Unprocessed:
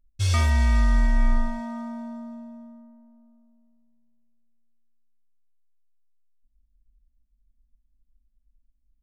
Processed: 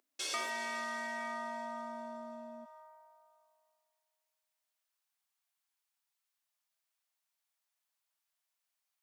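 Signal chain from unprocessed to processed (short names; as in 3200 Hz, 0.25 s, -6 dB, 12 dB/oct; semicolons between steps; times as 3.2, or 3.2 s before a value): steep high-pass 310 Hz 36 dB/oct, from 2.64 s 730 Hz; compressor 2:1, threshold -59 dBFS, peak gain reduction 18 dB; gain +9.5 dB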